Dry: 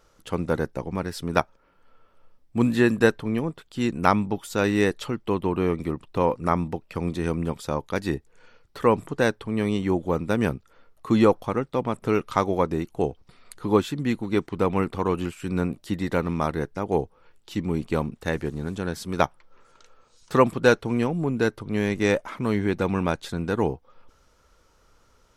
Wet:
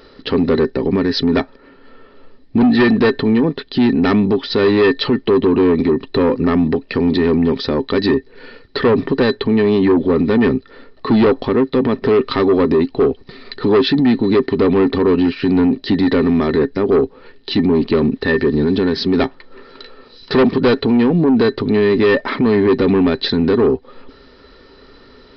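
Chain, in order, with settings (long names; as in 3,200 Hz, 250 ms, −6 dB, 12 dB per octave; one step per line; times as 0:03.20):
high-shelf EQ 2,600 Hz +8.5 dB
hollow resonant body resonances 270/390/1,800/4,000 Hz, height 17 dB, ringing for 65 ms
soft clipping −10.5 dBFS, distortion −9 dB
downsampling to 11,025 Hz
boost into a limiter +18.5 dB
level −7 dB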